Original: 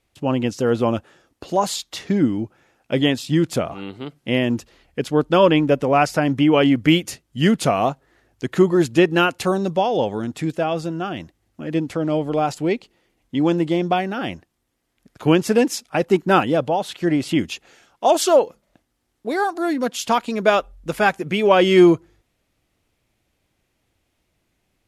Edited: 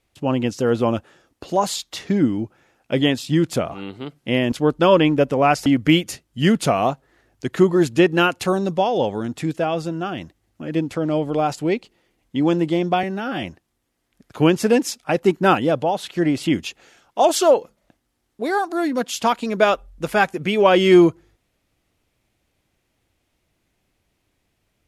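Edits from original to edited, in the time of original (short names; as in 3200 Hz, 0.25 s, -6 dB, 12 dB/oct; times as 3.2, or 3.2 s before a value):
4.52–5.03 cut
6.17–6.65 cut
14.02–14.29 stretch 1.5×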